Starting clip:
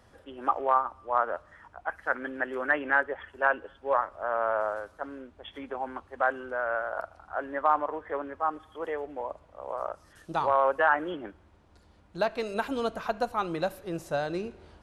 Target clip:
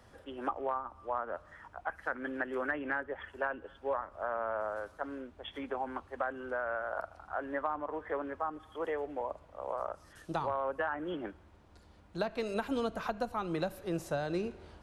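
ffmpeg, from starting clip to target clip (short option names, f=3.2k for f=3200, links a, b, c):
-filter_complex "[0:a]acrossover=split=290[a][b];[b]acompressor=threshold=-32dB:ratio=6[c];[a][c]amix=inputs=2:normalize=0"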